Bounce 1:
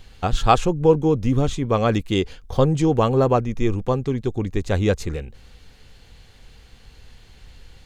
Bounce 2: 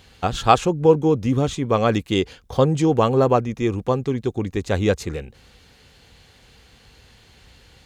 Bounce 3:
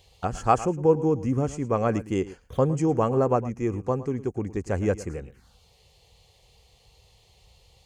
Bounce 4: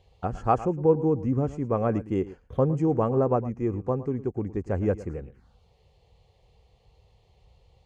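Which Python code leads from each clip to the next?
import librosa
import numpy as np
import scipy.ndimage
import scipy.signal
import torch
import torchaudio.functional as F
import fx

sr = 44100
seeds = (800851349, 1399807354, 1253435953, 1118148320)

y1 = scipy.signal.sosfilt(scipy.signal.butter(2, 55.0, 'highpass', fs=sr, output='sos'), x)
y1 = fx.low_shelf(y1, sr, hz=130.0, db=-5.0)
y1 = y1 * librosa.db_to_amplitude(1.5)
y2 = fx.env_phaser(y1, sr, low_hz=220.0, high_hz=3700.0, full_db=-23.0)
y2 = y2 + 10.0 ** (-16.5 / 20.0) * np.pad(y2, (int(110 * sr / 1000.0), 0))[:len(y2)]
y2 = y2 * librosa.db_to_amplitude(-5.0)
y3 = fx.lowpass(y2, sr, hz=1000.0, slope=6)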